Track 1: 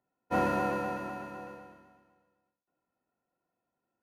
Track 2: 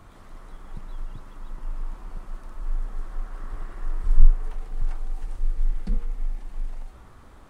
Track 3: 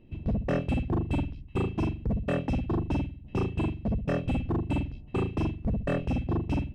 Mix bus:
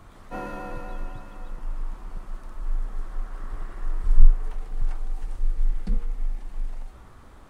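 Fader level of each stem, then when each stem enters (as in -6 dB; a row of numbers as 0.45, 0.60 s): -6.5 dB, +0.5 dB, off; 0.00 s, 0.00 s, off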